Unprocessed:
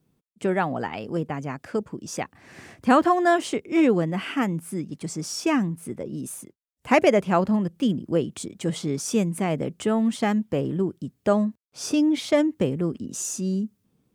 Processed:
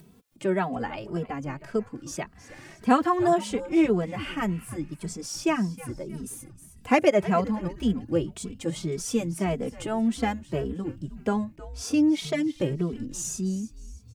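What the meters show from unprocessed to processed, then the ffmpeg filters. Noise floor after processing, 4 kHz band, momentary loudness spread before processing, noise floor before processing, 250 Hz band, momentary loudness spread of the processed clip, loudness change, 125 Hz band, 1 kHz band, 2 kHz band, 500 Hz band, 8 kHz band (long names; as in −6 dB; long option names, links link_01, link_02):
−53 dBFS, −3.0 dB, 13 LU, −73 dBFS, −2.5 dB, 14 LU, −3.0 dB, −2.5 dB, −2.5 dB, −4.0 dB, −3.0 dB, −2.5 dB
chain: -filter_complex "[0:a]asplit=4[link_01][link_02][link_03][link_04];[link_02]adelay=314,afreqshift=-150,volume=-16dB[link_05];[link_03]adelay=628,afreqshift=-300,volume=-24.4dB[link_06];[link_04]adelay=942,afreqshift=-450,volume=-32.8dB[link_07];[link_01][link_05][link_06][link_07]amix=inputs=4:normalize=0,acompressor=mode=upward:threshold=-37dB:ratio=2.5,asplit=2[link_08][link_09];[link_09]adelay=2.7,afreqshift=1.8[link_10];[link_08][link_10]amix=inputs=2:normalize=1"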